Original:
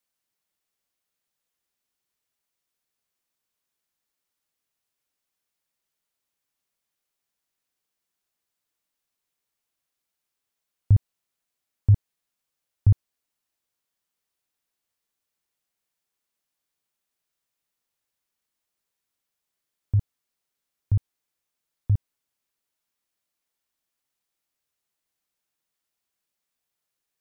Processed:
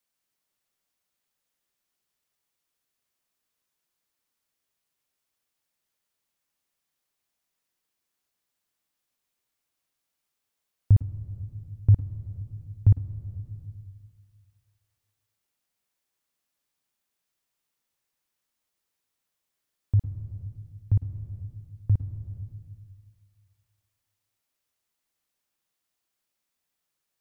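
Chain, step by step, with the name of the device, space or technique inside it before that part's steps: compressed reverb return (on a send at -4 dB: reverberation RT60 1.6 s, pre-delay 100 ms + compression 10:1, threshold -28 dBFS, peak gain reduction 14 dB)

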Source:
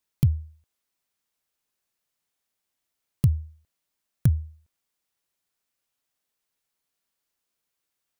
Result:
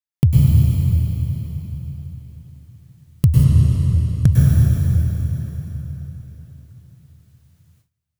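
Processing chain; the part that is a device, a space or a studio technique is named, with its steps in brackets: cathedral (reverberation RT60 4.4 s, pre-delay 97 ms, DRR -7.5 dB); 3.44–4.33 s: low-pass 8.9 kHz 12 dB/octave; gate with hold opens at -53 dBFS; trim +6 dB

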